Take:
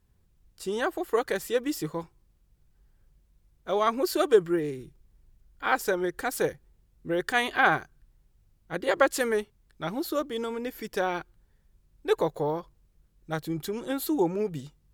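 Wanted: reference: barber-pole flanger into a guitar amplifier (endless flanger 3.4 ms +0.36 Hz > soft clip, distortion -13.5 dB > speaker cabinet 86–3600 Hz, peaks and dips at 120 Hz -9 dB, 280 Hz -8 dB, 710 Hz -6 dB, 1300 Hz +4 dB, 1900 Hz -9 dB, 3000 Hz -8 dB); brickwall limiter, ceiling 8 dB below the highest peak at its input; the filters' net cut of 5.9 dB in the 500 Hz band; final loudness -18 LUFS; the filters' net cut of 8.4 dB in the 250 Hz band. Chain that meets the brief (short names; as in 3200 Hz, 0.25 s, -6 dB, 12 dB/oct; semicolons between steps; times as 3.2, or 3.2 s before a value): bell 250 Hz -6 dB; bell 500 Hz -3.5 dB; limiter -16 dBFS; endless flanger 3.4 ms +0.36 Hz; soft clip -25 dBFS; speaker cabinet 86–3600 Hz, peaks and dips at 120 Hz -9 dB, 280 Hz -8 dB, 710 Hz -6 dB, 1300 Hz +4 dB, 1900 Hz -9 dB, 3000 Hz -8 dB; gain +21 dB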